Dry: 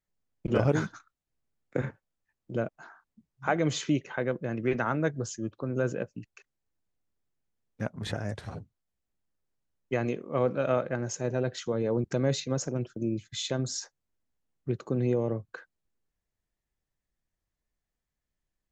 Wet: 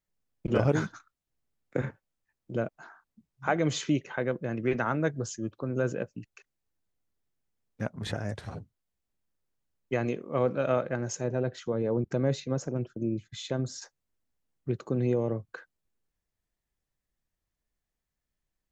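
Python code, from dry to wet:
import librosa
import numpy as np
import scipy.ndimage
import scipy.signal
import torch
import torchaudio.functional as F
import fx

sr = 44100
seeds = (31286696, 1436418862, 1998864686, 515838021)

y = fx.high_shelf(x, sr, hz=2500.0, db=-9.0, at=(11.24, 13.82))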